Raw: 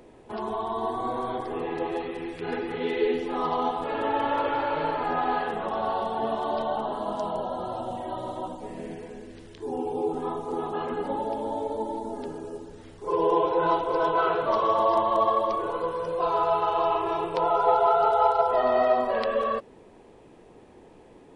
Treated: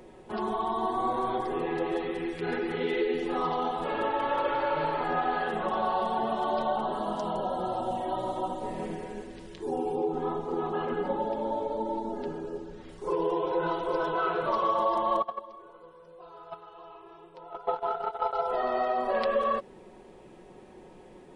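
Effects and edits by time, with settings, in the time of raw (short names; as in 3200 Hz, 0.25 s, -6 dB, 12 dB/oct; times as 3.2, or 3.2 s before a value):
8.11–8.86 echo throw 0.38 s, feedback 25%, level -8.5 dB
9.95–12.89 air absorption 100 m
15.22–18.33 gate -20 dBFS, range -22 dB
whole clip: compressor 4:1, threshold -25 dBFS; comb 5.4 ms, depth 48%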